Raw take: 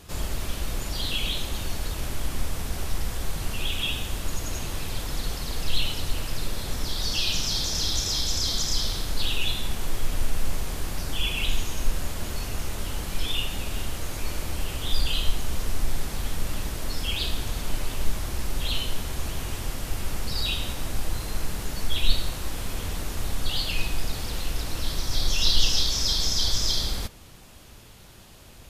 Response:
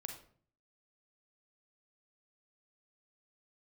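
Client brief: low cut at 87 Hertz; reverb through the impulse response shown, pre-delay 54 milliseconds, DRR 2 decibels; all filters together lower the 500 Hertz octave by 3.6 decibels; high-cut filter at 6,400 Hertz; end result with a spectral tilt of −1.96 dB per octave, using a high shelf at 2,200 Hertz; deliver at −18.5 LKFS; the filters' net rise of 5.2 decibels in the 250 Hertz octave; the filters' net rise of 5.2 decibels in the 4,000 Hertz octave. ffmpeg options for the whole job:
-filter_complex "[0:a]highpass=87,lowpass=6400,equalizer=frequency=250:width_type=o:gain=9,equalizer=frequency=500:width_type=o:gain=-8.5,highshelf=frequency=2200:gain=4,equalizer=frequency=4000:width_type=o:gain=3.5,asplit=2[link_01][link_02];[1:a]atrim=start_sample=2205,adelay=54[link_03];[link_02][link_03]afir=irnorm=-1:irlink=0,volume=1dB[link_04];[link_01][link_04]amix=inputs=2:normalize=0,volume=5dB"

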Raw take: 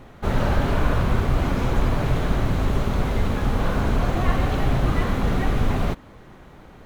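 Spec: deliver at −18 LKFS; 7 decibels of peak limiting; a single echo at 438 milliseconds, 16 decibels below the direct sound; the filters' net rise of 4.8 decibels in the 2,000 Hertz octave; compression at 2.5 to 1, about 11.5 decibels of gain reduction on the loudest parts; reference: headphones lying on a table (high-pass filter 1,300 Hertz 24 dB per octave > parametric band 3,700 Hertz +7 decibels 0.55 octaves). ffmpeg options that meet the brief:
ffmpeg -i in.wav -af "equalizer=frequency=2000:width_type=o:gain=6,acompressor=threshold=-33dB:ratio=2.5,alimiter=level_in=1dB:limit=-24dB:level=0:latency=1,volume=-1dB,highpass=frequency=1300:width=0.5412,highpass=frequency=1300:width=1.3066,equalizer=frequency=3700:width_type=o:width=0.55:gain=7,aecho=1:1:438:0.158,volume=24.5dB" out.wav

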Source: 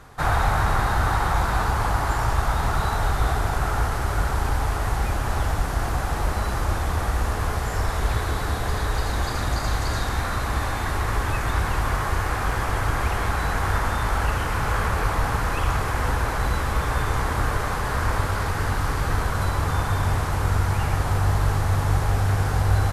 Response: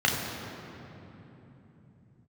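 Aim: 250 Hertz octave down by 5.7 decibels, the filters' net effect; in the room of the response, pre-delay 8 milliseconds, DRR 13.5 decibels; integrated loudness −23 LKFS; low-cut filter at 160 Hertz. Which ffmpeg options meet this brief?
-filter_complex "[0:a]highpass=160,equalizer=frequency=250:width_type=o:gain=-6.5,asplit=2[link_01][link_02];[1:a]atrim=start_sample=2205,adelay=8[link_03];[link_02][link_03]afir=irnorm=-1:irlink=0,volume=-28.5dB[link_04];[link_01][link_04]amix=inputs=2:normalize=0,volume=4.5dB"

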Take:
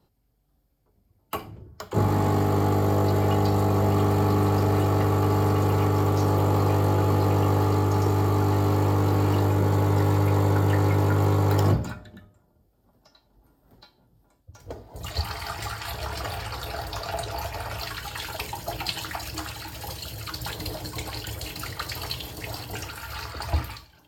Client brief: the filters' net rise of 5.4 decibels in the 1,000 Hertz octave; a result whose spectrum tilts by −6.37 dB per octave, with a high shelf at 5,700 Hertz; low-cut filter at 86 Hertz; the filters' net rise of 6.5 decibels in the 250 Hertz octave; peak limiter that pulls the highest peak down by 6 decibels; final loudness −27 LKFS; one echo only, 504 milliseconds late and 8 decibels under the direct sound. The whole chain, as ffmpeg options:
ffmpeg -i in.wav -af "highpass=86,equalizer=frequency=250:width_type=o:gain=8.5,equalizer=frequency=1000:width_type=o:gain=6.5,highshelf=frequency=5700:gain=-7,alimiter=limit=-12.5dB:level=0:latency=1,aecho=1:1:504:0.398,volume=-3dB" out.wav

